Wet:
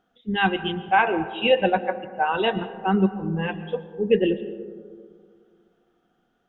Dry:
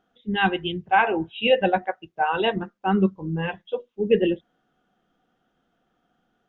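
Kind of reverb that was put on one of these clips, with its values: digital reverb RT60 2 s, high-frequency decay 0.25×, pre-delay 85 ms, DRR 13 dB

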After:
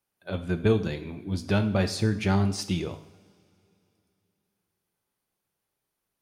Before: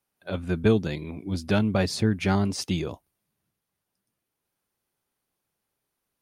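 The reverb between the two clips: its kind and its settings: two-slope reverb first 0.64 s, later 3.1 s, from -21 dB, DRR 8 dB; gain -2 dB

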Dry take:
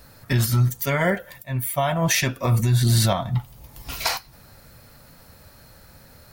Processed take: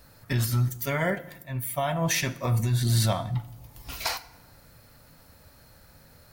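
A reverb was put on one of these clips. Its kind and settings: FDN reverb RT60 1 s, low-frequency decay 1.4×, high-frequency decay 0.7×, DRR 14 dB; gain -5.5 dB

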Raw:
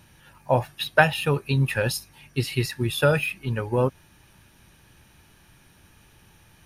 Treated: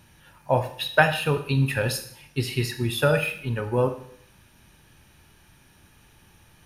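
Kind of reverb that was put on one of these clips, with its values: Schroeder reverb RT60 0.63 s, combs from 26 ms, DRR 8 dB; gain -1 dB

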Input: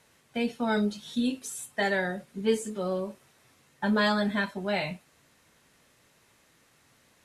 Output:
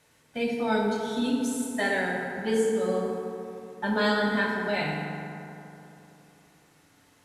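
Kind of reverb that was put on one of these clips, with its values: FDN reverb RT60 3 s, high-frequency decay 0.45×, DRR -2 dB; gain -2 dB

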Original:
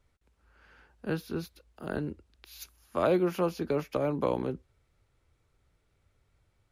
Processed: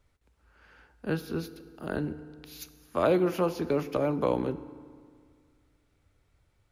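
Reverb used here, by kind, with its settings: FDN reverb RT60 2 s, low-frequency decay 1.1×, high-frequency decay 0.65×, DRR 13 dB; gain +1.5 dB

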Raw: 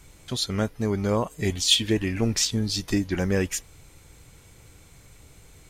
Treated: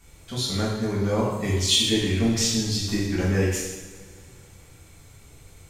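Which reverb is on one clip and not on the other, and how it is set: two-slope reverb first 0.98 s, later 2.9 s, from -18 dB, DRR -7 dB; gain -6.5 dB

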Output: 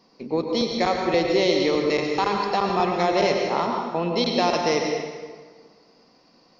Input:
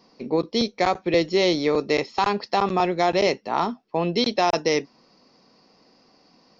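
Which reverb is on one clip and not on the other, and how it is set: plate-style reverb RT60 1.6 s, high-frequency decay 0.75×, pre-delay 85 ms, DRR 1.5 dB; gain -2 dB

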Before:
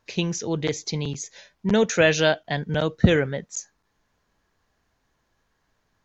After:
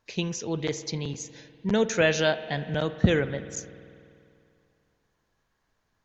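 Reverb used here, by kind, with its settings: spring tank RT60 2.5 s, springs 49 ms, chirp 35 ms, DRR 13 dB; gain -4 dB

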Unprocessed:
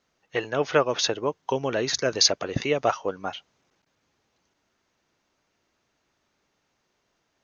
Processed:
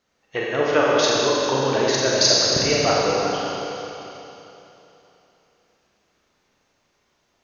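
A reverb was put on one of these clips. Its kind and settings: Schroeder reverb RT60 3.2 s, combs from 30 ms, DRR -5 dB

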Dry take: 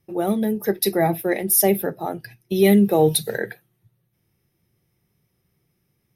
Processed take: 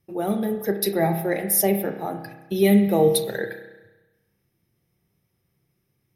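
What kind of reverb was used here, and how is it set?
spring tank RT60 1.1 s, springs 30 ms, chirp 40 ms, DRR 6.5 dB; gain -3 dB

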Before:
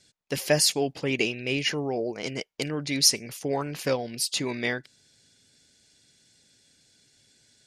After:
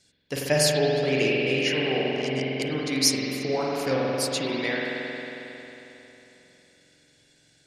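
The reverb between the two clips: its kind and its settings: spring tank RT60 3.5 s, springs 45 ms, chirp 60 ms, DRR -4 dB; gain -2 dB

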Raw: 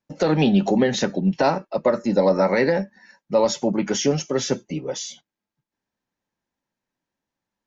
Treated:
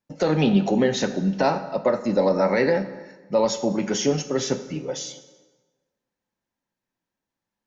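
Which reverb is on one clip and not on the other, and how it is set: plate-style reverb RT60 1.3 s, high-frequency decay 0.75×, DRR 9.5 dB; gain -2 dB

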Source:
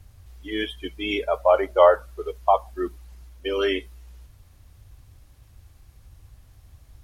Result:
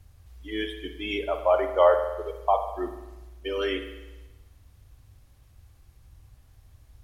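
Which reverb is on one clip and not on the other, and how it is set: spring tank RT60 1.1 s, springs 49 ms, chirp 35 ms, DRR 7.5 dB; gain -4.5 dB

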